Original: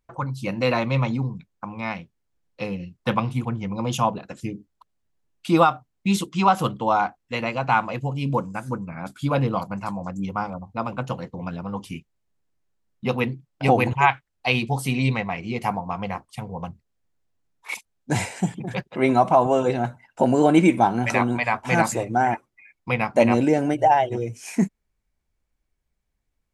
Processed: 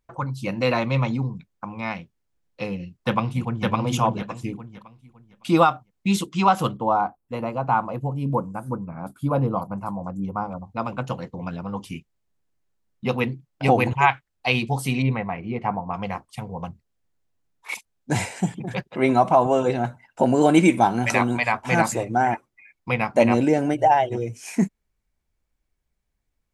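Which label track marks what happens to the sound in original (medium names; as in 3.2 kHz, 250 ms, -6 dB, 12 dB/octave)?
2.790000	3.660000	echo throw 560 ms, feedback 25%, level -1 dB
6.760000	10.510000	high-order bell 3.5 kHz -13.5 dB 2.5 oct
15.020000	15.940000	low-pass 1.8 kHz
20.410000	21.520000	treble shelf 3.7 kHz +6.5 dB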